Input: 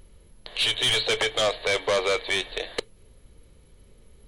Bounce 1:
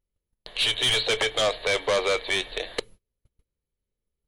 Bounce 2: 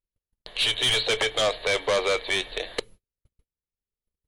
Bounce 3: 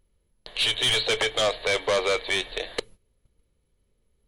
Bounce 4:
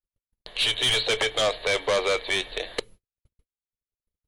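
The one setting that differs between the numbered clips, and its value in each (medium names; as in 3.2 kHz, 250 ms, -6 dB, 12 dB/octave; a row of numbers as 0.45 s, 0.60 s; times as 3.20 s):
gate, range: -32 dB, -44 dB, -17 dB, -59 dB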